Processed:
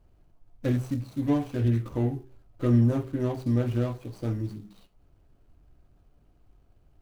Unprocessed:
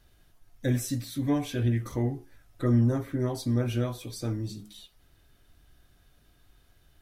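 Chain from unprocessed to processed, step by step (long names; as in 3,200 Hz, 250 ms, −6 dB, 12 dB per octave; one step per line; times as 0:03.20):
running median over 25 samples
high-shelf EQ 10,000 Hz +3 dB
hum removal 64.51 Hz, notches 6
level +2 dB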